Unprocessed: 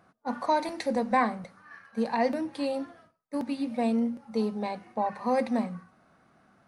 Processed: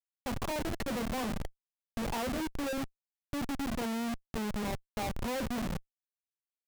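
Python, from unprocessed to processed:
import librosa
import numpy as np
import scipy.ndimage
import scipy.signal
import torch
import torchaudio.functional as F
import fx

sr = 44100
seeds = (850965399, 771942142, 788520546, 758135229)

y = fx.env_lowpass_down(x, sr, base_hz=810.0, full_db=-22.5)
y = fx.schmitt(y, sr, flips_db=-33.5)
y = F.gain(torch.from_numpy(y), -2.5).numpy()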